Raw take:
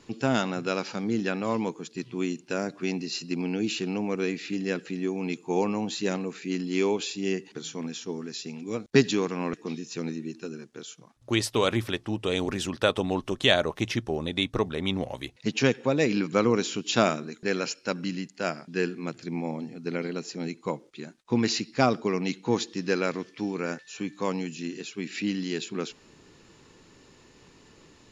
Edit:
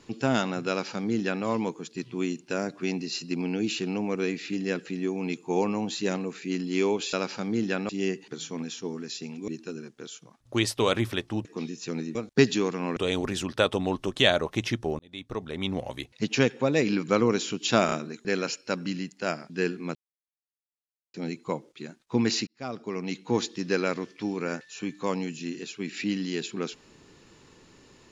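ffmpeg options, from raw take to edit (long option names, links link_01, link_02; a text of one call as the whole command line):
ffmpeg -i in.wav -filter_complex "[0:a]asplit=13[link_01][link_02][link_03][link_04][link_05][link_06][link_07][link_08][link_09][link_10][link_11][link_12][link_13];[link_01]atrim=end=7.132[link_14];[link_02]atrim=start=0.688:end=1.452[link_15];[link_03]atrim=start=7.128:end=8.722[link_16];[link_04]atrim=start=10.238:end=12.212[link_17];[link_05]atrim=start=9.538:end=10.242[link_18];[link_06]atrim=start=8.718:end=9.542[link_19];[link_07]atrim=start=12.208:end=14.23,asetpts=PTS-STARTPTS,afade=type=out:start_time=2.018:duration=0.004:curve=hsin[link_20];[link_08]atrim=start=14.23:end=17.132,asetpts=PTS-STARTPTS,afade=type=in:duration=0.85[link_21];[link_09]atrim=start=17.098:end=17.132[link_22];[link_10]atrim=start=17.098:end=19.13,asetpts=PTS-STARTPTS,afade=type=out:start_time=2.028:duration=0.004:curve=hsin[link_23];[link_11]atrim=start=19.13:end=20.32,asetpts=PTS-STARTPTS,volume=0[link_24];[link_12]atrim=start=20.32:end=21.65,asetpts=PTS-STARTPTS,afade=type=in:duration=0.004:curve=hsin,afade=type=out:start_time=1.326:duration=0.004:curve=hsin[link_25];[link_13]atrim=start=21.65,asetpts=PTS-STARTPTS,afade=type=in:duration=0.92[link_26];[link_14][link_15]acrossfade=duration=0.004:curve1=hsin:curve2=hsin[link_27];[link_27][link_16]acrossfade=duration=0.004:curve1=hsin:curve2=hsin[link_28];[link_28][link_17]acrossfade=duration=0.004:curve1=hsin:curve2=hsin[link_29];[link_29][link_18]acrossfade=duration=0.004:curve1=hsin:curve2=hsin[link_30];[link_30][link_19]acrossfade=duration=0.004:curve1=hsin:curve2=hsin[link_31];[link_20][link_21]concat=n=2:v=0:a=1[link_32];[link_31][link_32]acrossfade=duration=0.004:curve1=hsin:curve2=hsin[link_33];[link_33][link_22]acrossfade=duration=0.004:curve1=hsin:curve2=hsin[link_34];[link_23][link_24][link_25][link_26]concat=n=4:v=0:a=1[link_35];[link_34][link_35]acrossfade=duration=0.004:curve1=hsin:curve2=hsin" out.wav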